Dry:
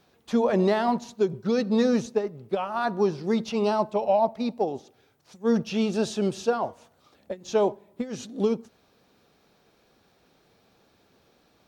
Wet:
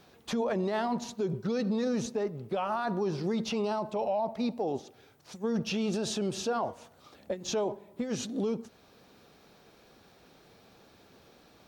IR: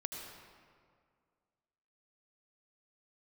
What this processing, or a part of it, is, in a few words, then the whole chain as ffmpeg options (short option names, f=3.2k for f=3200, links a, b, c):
stacked limiters: -af "alimiter=limit=-17.5dB:level=0:latency=1:release=58,alimiter=limit=-21dB:level=0:latency=1:release=454,alimiter=level_in=3.5dB:limit=-24dB:level=0:latency=1:release=40,volume=-3.5dB,volume=4.5dB"